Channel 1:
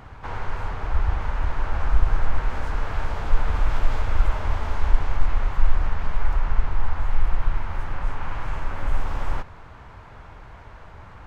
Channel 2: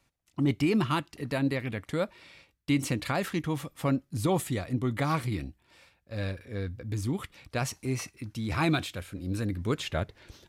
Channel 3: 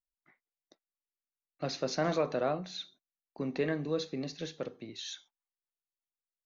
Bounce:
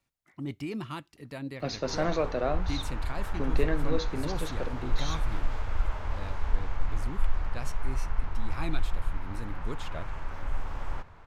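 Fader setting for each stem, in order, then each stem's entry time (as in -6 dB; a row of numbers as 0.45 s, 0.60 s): -8.5 dB, -10.0 dB, +1.5 dB; 1.60 s, 0.00 s, 0.00 s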